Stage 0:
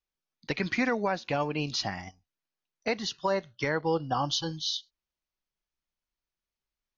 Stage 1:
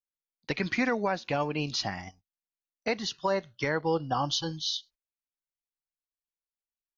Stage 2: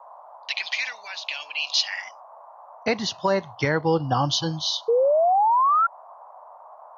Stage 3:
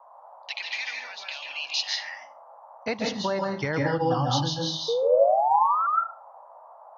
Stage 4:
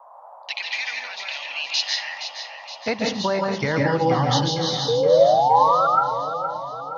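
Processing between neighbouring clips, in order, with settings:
noise gate −54 dBFS, range −17 dB
high-pass filter sweep 3,000 Hz → 95 Hz, 0:01.83–0:02.87; noise in a band 600–1,100 Hz −51 dBFS; sound drawn into the spectrogram rise, 0:04.88–0:05.87, 450–1,400 Hz −24 dBFS; level +5.5 dB
convolution reverb RT60 0.35 s, pre-delay 138 ms, DRR 0 dB; level −6 dB
echo with a time of its own for lows and highs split 550 Hz, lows 612 ms, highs 469 ms, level −9.5 dB; level +4.5 dB

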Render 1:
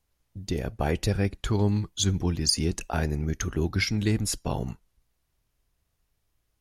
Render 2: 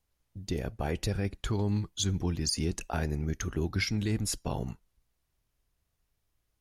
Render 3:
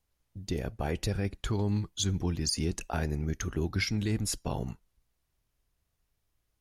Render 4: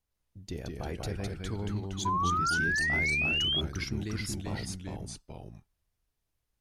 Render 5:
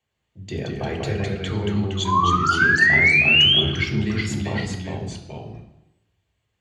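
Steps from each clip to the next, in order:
brickwall limiter −15.5 dBFS, peak gain reduction 6 dB; level −3.5 dB
no processing that can be heard
delay with pitch and tempo change per echo 145 ms, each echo −1 semitone, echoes 2; sound drawn into the spectrogram rise, 0:02.05–0:03.61, 980–3,400 Hz −23 dBFS; level −6 dB
convolution reverb RT60 0.90 s, pre-delay 3 ms, DRR 1.5 dB

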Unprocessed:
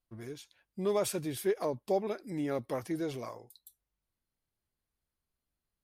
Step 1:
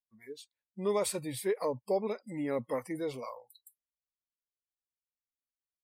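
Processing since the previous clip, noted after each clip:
EQ curve with evenly spaced ripples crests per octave 0.97, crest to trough 7 dB
noise reduction from a noise print of the clip's start 26 dB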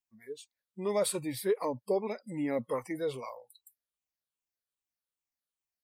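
rippled gain that drifts along the octave scale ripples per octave 0.68, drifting −2.5 Hz, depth 8 dB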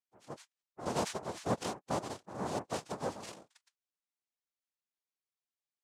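cochlear-implant simulation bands 2
level −5 dB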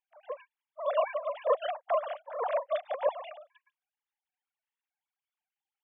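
three sine waves on the formant tracks
level +6.5 dB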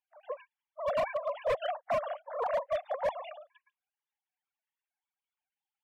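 spectral peaks only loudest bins 64
gain into a clipping stage and back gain 25 dB

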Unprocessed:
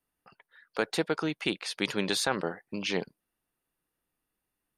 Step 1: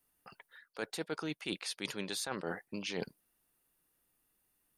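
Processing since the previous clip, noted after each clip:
high-shelf EQ 6,600 Hz +10 dB
reversed playback
downward compressor 16 to 1, threshold −36 dBFS, peak gain reduction 16 dB
reversed playback
level +2 dB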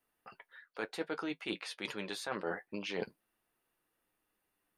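bass and treble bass −7 dB, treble −11 dB
flanger 0.55 Hz, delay 8.5 ms, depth 1.6 ms, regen −46%
level +6 dB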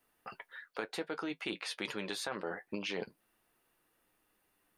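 downward compressor 6 to 1, threshold −41 dBFS, peak gain reduction 10 dB
level +6.5 dB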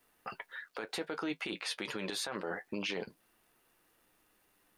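brickwall limiter −30 dBFS, peak gain reduction 9.5 dB
surface crackle 570 per second −69 dBFS
level +4 dB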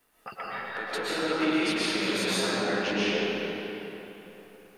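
convolution reverb RT60 3.5 s, pre-delay 88 ms, DRR −9.5 dB
level +1.5 dB

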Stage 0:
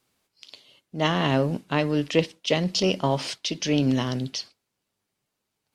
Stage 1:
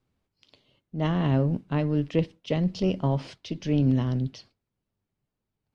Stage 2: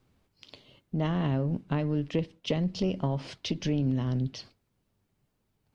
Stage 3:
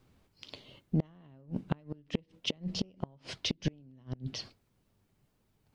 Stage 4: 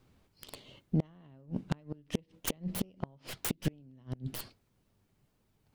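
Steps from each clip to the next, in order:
RIAA equalisation playback; level −7.5 dB
downward compressor 3 to 1, threshold −37 dBFS, peak gain reduction 14 dB; level +8 dB
gate with flip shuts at −20 dBFS, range −31 dB; level +2.5 dB
stylus tracing distortion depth 0.41 ms

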